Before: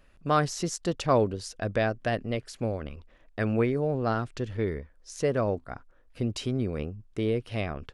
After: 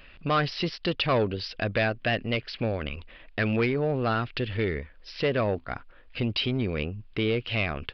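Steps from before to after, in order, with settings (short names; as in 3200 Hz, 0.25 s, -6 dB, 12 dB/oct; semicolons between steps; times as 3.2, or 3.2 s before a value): bell 2700 Hz +12.5 dB 1.3 oct; in parallel at +1 dB: compressor, threshold -37 dBFS, peak gain reduction 19.5 dB; on the sum: soft clip -17.5 dBFS, distortion -13 dB; downsampling 11025 Hz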